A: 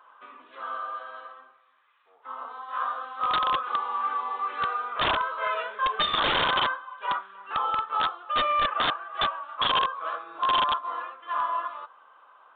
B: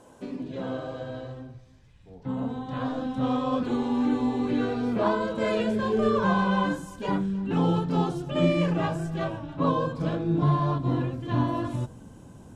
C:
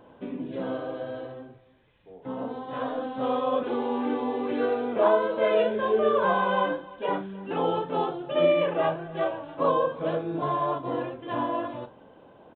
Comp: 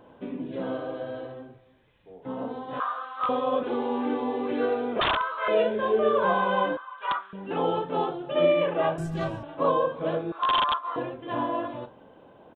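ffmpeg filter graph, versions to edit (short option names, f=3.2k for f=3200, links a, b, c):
-filter_complex "[0:a]asplit=4[a][b][c][d];[2:a]asplit=6[e][f][g][h][i][j];[e]atrim=end=2.802[k];[a]atrim=start=2.798:end=3.292[l];[f]atrim=start=3.288:end=5.002[m];[b]atrim=start=4.998:end=5.482[n];[g]atrim=start=5.478:end=6.772[o];[c]atrim=start=6.768:end=7.332[p];[h]atrim=start=7.328:end=8.982[q];[1:a]atrim=start=8.978:end=9.432[r];[i]atrim=start=9.428:end=10.322[s];[d]atrim=start=10.318:end=10.962[t];[j]atrim=start=10.958[u];[k][l]acrossfade=d=0.004:c1=hsin:c2=hsin[v];[v][m]acrossfade=d=0.004:c1=hsin:c2=hsin[w];[w][n]acrossfade=d=0.004:c1=hsin:c2=hsin[x];[x][o]acrossfade=d=0.004:c1=hsin:c2=hsin[y];[y][p]acrossfade=d=0.004:c1=hsin:c2=hsin[z];[z][q]acrossfade=d=0.004:c1=hsin:c2=hsin[aa];[aa][r]acrossfade=d=0.004:c1=hsin:c2=hsin[ab];[ab][s]acrossfade=d=0.004:c1=hsin:c2=hsin[ac];[ac][t]acrossfade=d=0.004:c1=hsin:c2=hsin[ad];[ad][u]acrossfade=d=0.004:c1=hsin:c2=hsin"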